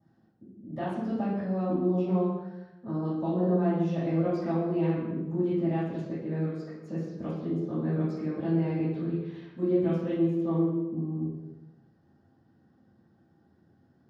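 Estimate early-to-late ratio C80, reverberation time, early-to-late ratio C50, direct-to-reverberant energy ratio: 2.5 dB, 1.0 s, -0.5 dB, -15.0 dB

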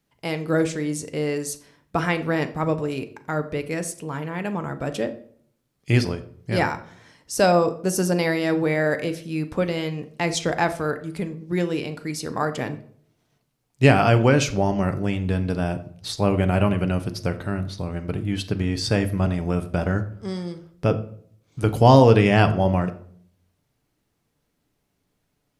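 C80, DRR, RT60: 17.0 dB, 8.0 dB, 0.55 s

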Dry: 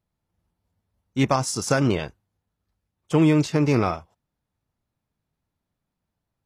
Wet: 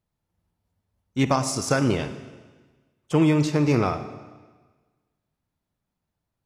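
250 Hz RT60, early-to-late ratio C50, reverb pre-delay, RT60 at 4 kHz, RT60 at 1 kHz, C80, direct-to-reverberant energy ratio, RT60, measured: 1.4 s, 11.0 dB, 34 ms, 1.3 s, 1.4 s, 12.5 dB, 10.0 dB, 1.4 s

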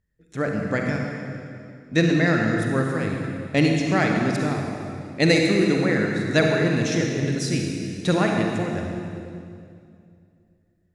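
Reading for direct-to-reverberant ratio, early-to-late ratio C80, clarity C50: 0.5 dB, 2.5 dB, 1.0 dB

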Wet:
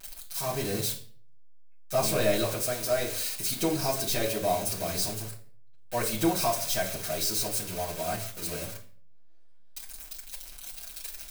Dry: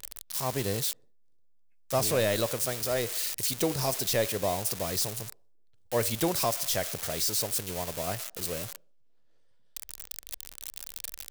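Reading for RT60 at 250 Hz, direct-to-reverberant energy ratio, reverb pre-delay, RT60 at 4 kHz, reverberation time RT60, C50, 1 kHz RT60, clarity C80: 0.60 s, -9.5 dB, 5 ms, 0.40 s, 0.45 s, 10.0 dB, 0.40 s, 15.0 dB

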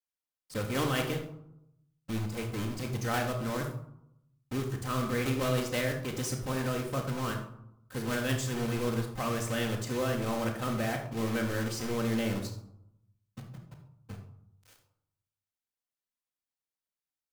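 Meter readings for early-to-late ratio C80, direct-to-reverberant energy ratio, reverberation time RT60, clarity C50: 10.0 dB, -9.5 dB, 0.75 s, 7.0 dB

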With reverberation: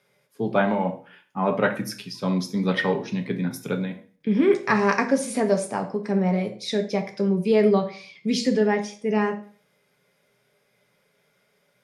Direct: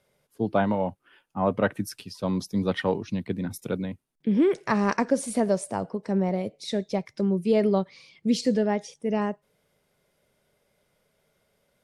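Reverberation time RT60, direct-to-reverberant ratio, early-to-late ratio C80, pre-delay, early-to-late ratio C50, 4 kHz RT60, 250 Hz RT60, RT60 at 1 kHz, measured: 0.45 s, 4.5 dB, 17.0 dB, 3 ms, 12.5 dB, 0.40 s, 0.40 s, 0.45 s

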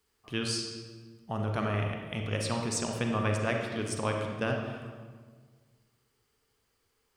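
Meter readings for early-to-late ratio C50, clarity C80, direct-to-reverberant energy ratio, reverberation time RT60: 3.0 dB, 4.5 dB, 1.5 dB, 1.6 s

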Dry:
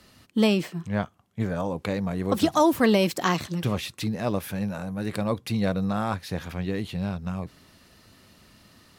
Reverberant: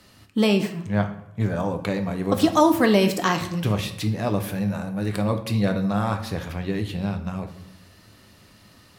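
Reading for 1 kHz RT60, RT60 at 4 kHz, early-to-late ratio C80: 0.80 s, 0.50 s, 14.0 dB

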